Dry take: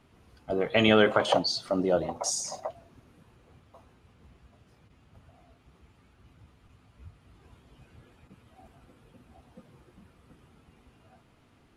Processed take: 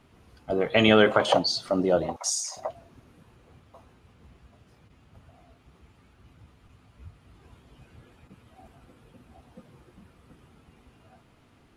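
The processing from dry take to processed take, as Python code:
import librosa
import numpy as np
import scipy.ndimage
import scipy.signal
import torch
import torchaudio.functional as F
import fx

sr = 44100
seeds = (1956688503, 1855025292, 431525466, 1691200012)

y = fx.highpass(x, sr, hz=1300.0, slope=12, at=(2.16, 2.57))
y = F.gain(torch.from_numpy(y), 2.5).numpy()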